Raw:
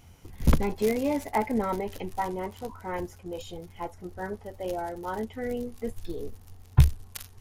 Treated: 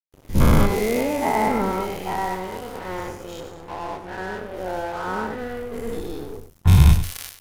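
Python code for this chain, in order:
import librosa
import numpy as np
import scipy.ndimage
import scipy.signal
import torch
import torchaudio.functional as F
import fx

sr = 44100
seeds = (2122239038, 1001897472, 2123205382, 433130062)

y = fx.spec_dilate(x, sr, span_ms=240)
y = fx.high_shelf_res(y, sr, hz=2000.0, db=-8.0, q=3.0, at=(3.4, 5.73))
y = np.sign(y) * np.maximum(np.abs(y) - 10.0 ** (-36.5 / 20.0), 0.0)
y = y + 10.0 ** (-10.0 / 20.0) * np.pad(y, (int(97 * sr / 1000.0), 0))[:len(y)]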